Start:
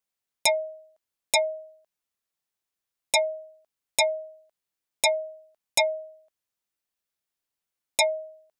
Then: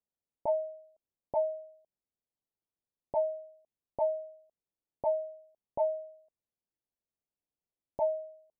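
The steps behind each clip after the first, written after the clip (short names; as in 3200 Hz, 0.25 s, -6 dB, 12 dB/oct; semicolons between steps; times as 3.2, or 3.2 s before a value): Bessel low-pass 570 Hz, order 8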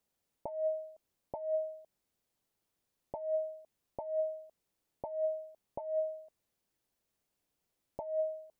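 negative-ratio compressor -40 dBFS, ratio -1; gain +4 dB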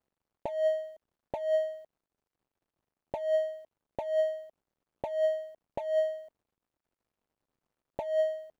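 median filter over 25 samples; gain +6.5 dB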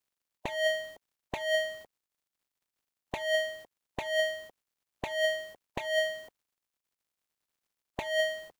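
spectral limiter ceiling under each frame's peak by 23 dB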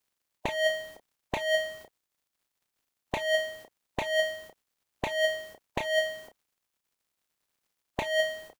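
doubler 31 ms -10 dB; gain +4.5 dB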